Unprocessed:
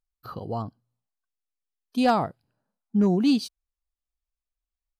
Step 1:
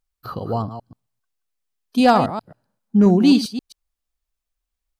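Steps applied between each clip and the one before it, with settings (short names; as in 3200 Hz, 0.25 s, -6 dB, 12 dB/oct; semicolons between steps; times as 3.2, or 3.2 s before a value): reverse delay 0.133 s, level -10.5 dB; gain +7 dB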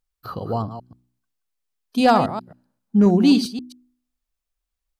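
de-hum 61.99 Hz, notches 6; gain -1 dB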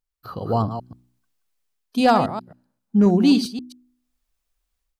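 AGC gain up to 11.5 dB; gain -5 dB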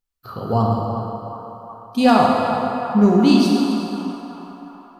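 narrowing echo 0.369 s, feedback 70%, band-pass 1100 Hz, level -8 dB; plate-style reverb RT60 2.6 s, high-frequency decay 0.75×, DRR -1.5 dB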